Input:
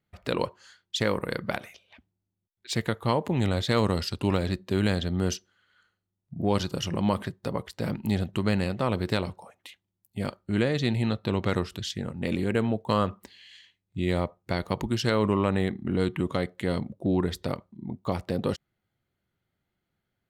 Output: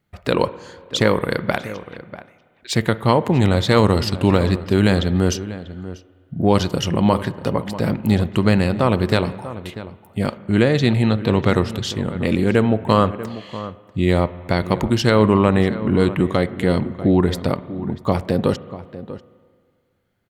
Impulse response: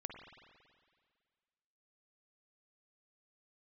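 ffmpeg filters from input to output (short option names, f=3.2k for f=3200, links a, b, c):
-filter_complex "[0:a]asplit=2[a][b];[b]adelay=641.4,volume=-14dB,highshelf=f=4k:g=-14.4[c];[a][c]amix=inputs=2:normalize=0,asplit=2[d][e];[1:a]atrim=start_sample=2205,lowpass=2.7k[f];[e][f]afir=irnorm=-1:irlink=0,volume=-7dB[g];[d][g]amix=inputs=2:normalize=0,volume=7.5dB"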